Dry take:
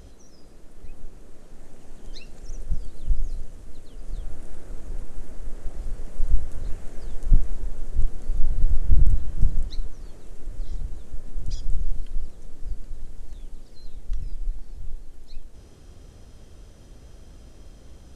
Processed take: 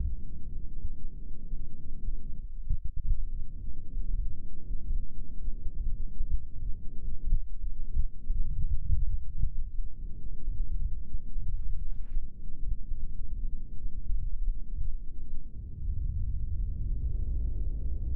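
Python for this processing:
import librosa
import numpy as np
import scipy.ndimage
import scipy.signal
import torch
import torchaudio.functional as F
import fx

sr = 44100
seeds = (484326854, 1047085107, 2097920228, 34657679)

y = fx.level_steps(x, sr, step_db=22, at=(2.39, 3.04))
y = fx.peak_eq(y, sr, hz=140.0, db=10.0, octaves=2.0, at=(8.45, 8.97), fade=0.02)
y = fx.filter_sweep_lowpass(y, sr, from_hz=180.0, to_hz=380.0, start_s=16.53, end_s=17.26, q=1.0)
y = fx.quant_dither(y, sr, seeds[0], bits=10, dither='none', at=(11.56, 12.2))
y = fx.band_squash(y, sr, depth_pct=100)
y = F.gain(torch.from_numpy(y), -4.0).numpy()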